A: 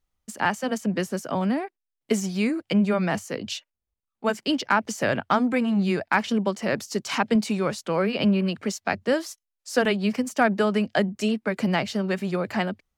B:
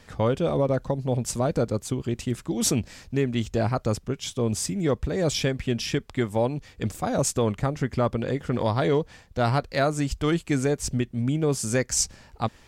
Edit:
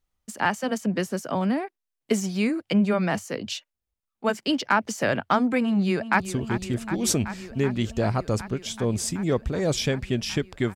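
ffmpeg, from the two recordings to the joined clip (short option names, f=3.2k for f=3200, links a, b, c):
-filter_complex "[0:a]apad=whole_dur=10.75,atrim=end=10.75,atrim=end=6.202[a];[1:a]atrim=start=1.768:end=6.32[b];[a][b]acrossfade=d=0.004:c1=hsin:c2=hsin,asplit=2[c][d];[d]afade=t=in:st=5.61:d=0.01,afade=t=out:st=6.2:d=0.01,aecho=0:1:380|760|1140|1520|1900|2280|2660|3040|3420|3800|4180|4560:0.251189|0.21351|0.181484|0.154261|0.131122|0.111454|0.0947357|0.0805253|0.0684465|0.0581795|0.0494526|0.0420347[e];[c][e]amix=inputs=2:normalize=0"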